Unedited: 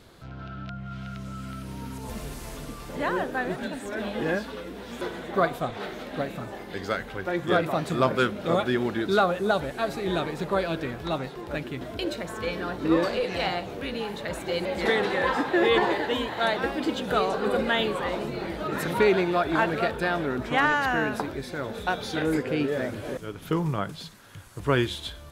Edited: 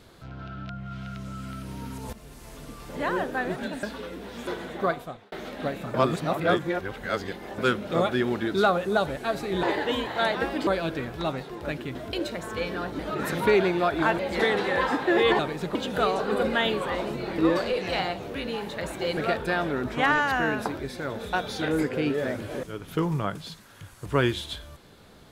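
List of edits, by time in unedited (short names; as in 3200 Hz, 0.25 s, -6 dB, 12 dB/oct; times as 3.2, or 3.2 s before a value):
2.13–3.13 fade in, from -13.5 dB
3.83–4.37 cut
5.26–5.86 fade out
6.48–8.12 reverse
10.17–10.53 swap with 15.85–16.89
12.85–14.64 swap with 18.52–19.71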